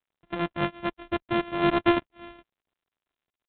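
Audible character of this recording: a buzz of ramps at a fixed pitch in blocks of 128 samples; G.726

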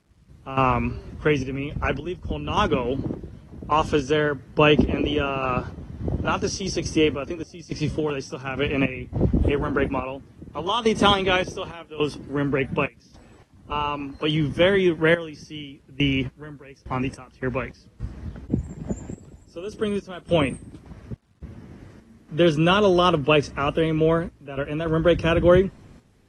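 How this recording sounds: random-step tremolo, depth 95%; a quantiser's noise floor 12-bit, dither none; AAC

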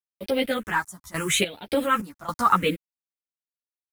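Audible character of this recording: a quantiser's noise floor 8-bit, dither none; phasing stages 4, 0.77 Hz, lowest notch 440–1200 Hz; random-step tremolo, depth 85%; a shimmering, thickened sound

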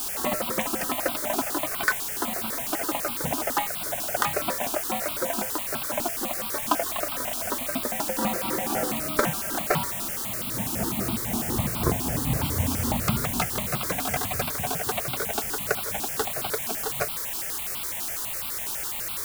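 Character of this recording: tremolo triangle 3.9 Hz, depth 55%; a quantiser's noise floor 6-bit, dither triangular; notches that jump at a steady rate 12 Hz 530–1800 Hz

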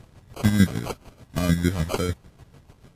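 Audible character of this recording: phasing stages 2, 3.6 Hz, lowest notch 550–2000 Hz; chopped level 6.7 Hz, depth 60%, duty 30%; aliases and images of a low sample rate 1.8 kHz, jitter 0%; Vorbis

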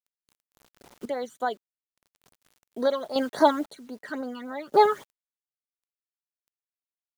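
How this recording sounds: phasing stages 12, 3.6 Hz, lowest notch 660–3000 Hz; a quantiser's noise floor 10-bit, dither none; random-step tremolo 1.9 Hz, depth 85%

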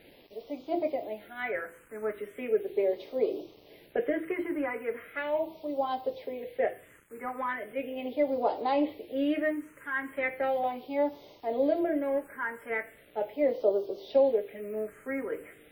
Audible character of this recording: a quantiser's noise floor 10-bit, dither none; phasing stages 4, 0.38 Hz, lowest notch 680–1700 Hz; WMA

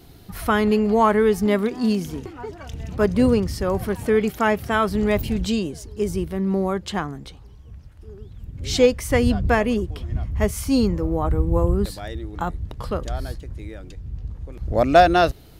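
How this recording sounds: noise floor -44 dBFS; spectral tilt -5.5 dB/octave

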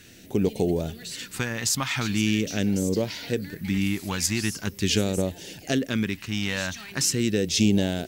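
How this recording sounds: phasing stages 2, 0.42 Hz, lowest notch 430–1200 Hz

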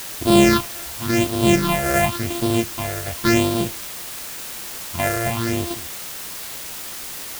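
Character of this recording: a buzz of ramps at a fixed pitch in blocks of 128 samples; phasing stages 6, 0.92 Hz, lowest notch 250–1900 Hz; a quantiser's noise floor 6-bit, dither triangular

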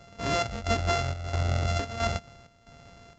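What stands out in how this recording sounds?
a buzz of ramps at a fixed pitch in blocks of 64 samples; chopped level 1.5 Hz, depth 65%, duty 70%; µ-law

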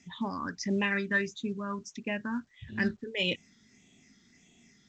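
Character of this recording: phasing stages 6, 1.6 Hz, lowest notch 700–1400 Hz; A-law

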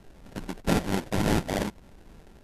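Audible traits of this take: a buzz of ramps at a fixed pitch in blocks of 32 samples; phasing stages 4, 2.1 Hz, lowest notch 420–1100 Hz; aliases and images of a low sample rate 1.2 kHz, jitter 20%; MP2

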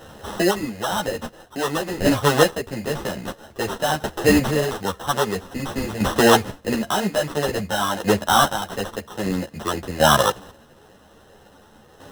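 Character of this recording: aliases and images of a low sample rate 2.3 kHz, jitter 0%; chopped level 0.5 Hz, depth 60%, duty 25%; a shimmering, thickened sound

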